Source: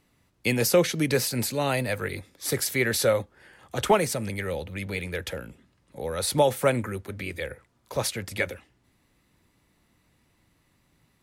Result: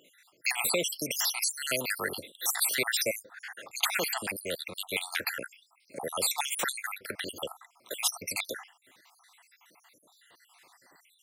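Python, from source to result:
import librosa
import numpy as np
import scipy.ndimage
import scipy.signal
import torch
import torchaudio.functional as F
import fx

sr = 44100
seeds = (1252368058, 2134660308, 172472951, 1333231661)

y = fx.spec_dropout(x, sr, seeds[0], share_pct=69)
y = scipy.signal.sosfilt(scipy.signal.butter(2, 490.0, 'highpass', fs=sr, output='sos'), y)
y = fx.spectral_comp(y, sr, ratio=2.0)
y = y * 10.0 ** (2.0 / 20.0)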